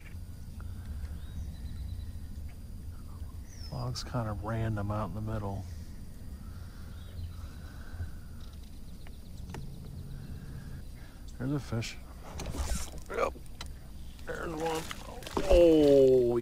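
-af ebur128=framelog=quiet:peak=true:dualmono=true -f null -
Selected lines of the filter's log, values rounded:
Integrated loudness:
  I:         -28.4 LUFS
  Threshold: -40.9 LUFS
Loudness range:
  LRA:        14.2 LU
  Threshold: -54.4 LUFS
  LRA low:   -42.5 LUFS
  LRA high:  -28.3 LUFS
True peak:
  Peak:      -10.0 dBFS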